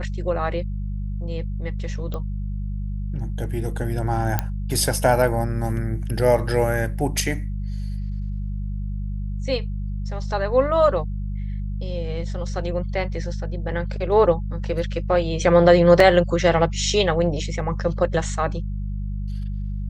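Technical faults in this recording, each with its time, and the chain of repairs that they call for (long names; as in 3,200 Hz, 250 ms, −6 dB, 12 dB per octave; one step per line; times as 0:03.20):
mains hum 50 Hz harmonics 4 −27 dBFS
0:02.14: click −18 dBFS
0:04.39: click −7 dBFS
0:16.00: drop-out 3.1 ms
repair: click removal
hum removal 50 Hz, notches 4
repair the gap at 0:16.00, 3.1 ms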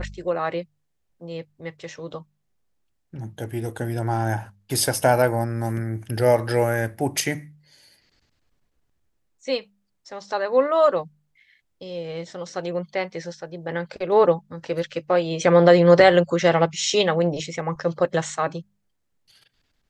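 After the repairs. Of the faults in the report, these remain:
none of them is left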